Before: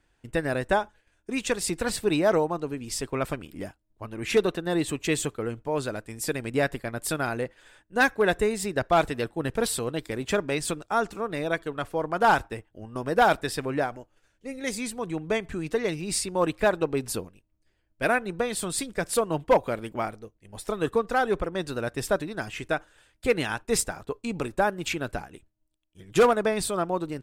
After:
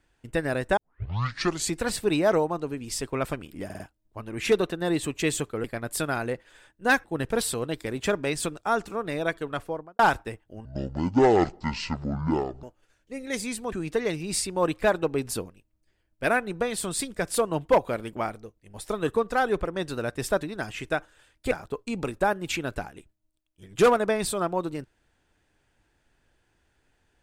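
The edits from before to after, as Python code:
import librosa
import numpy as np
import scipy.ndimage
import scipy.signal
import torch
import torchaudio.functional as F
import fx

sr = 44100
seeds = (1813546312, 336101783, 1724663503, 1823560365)

y = fx.studio_fade_out(x, sr, start_s=11.81, length_s=0.43)
y = fx.edit(y, sr, fx.tape_start(start_s=0.77, length_s=0.98),
    fx.stutter(start_s=3.65, slice_s=0.05, count=4),
    fx.cut(start_s=5.49, length_s=1.26),
    fx.cut(start_s=8.15, length_s=1.14),
    fx.speed_span(start_s=12.9, length_s=1.07, speed=0.54),
    fx.cut(start_s=15.06, length_s=0.45),
    fx.cut(start_s=23.3, length_s=0.58), tone=tone)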